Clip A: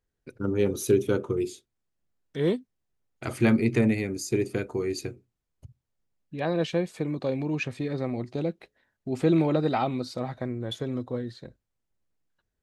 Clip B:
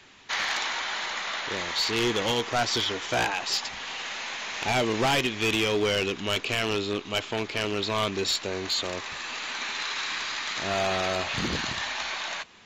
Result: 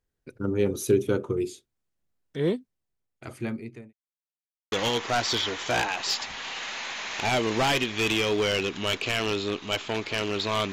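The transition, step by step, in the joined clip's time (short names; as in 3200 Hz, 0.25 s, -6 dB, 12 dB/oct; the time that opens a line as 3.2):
clip A
2.39–3.93 fade out linear
3.93–4.72 mute
4.72 switch to clip B from 2.15 s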